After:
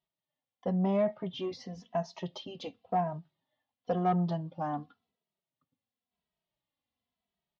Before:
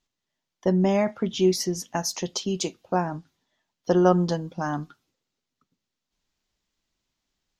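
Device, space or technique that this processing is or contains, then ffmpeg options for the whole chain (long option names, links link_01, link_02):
barber-pole flanger into a guitar amplifier: -filter_complex "[0:a]asplit=2[link_01][link_02];[link_02]adelay=2.7,afreqshift=-0.94[link_03];[link_01][link_03]amix=inputs=2:normalize=1,asoftclip=type=tanh:threshold=-18.5dB,highpass=88,equalizer=frequency=340:width_type=q:width=4:gain=-8,equalizer=frequency=690:width_type=q:width=4:gain=6,equalizer=frequency=1500:width_type=q:width=4:gain=-9,equalizer=frequency=2400:width_type=q:width=4:gain=-5,lowpass=frequency=3500:width=0.5412,lowpass=frequency=3500:width=1.3066,volume=-3dB"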